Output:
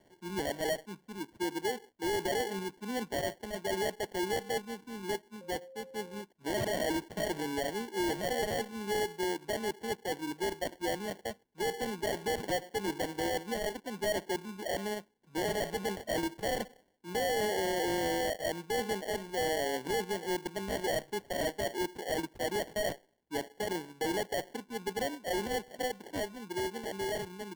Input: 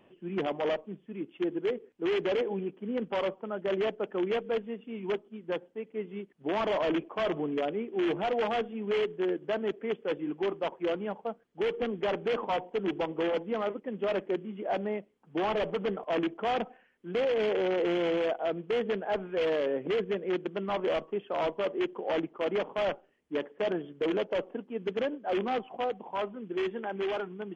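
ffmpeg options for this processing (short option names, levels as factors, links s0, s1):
-filter_complex "[0:a]acrusher=samples=35:mix=1:aa=0.000001,asettb=1/sr,asplit=3[s0][s1][s2];[s0]atrim=end=5.414[s3];[s1]atrim=start=5.41:end=6.22,asetpts=PTS-STARTPTS,afade=t=in:d=0.004:c=qsin,afade=t=out:st=0.806:d=0.004:c=qsin,aeval=exprs='val(0)+0.00562*sin(2*PI*530*n/s)':c=same[s4];[s2]atrim=start=6.216[s5];[s3][s4]acrossfade=d=0.004:c1=hsin:c2=qsin[s6];[s6][s5]acrossfade=d=0.004:c1=qsin:c2=hsin,volume=0.668"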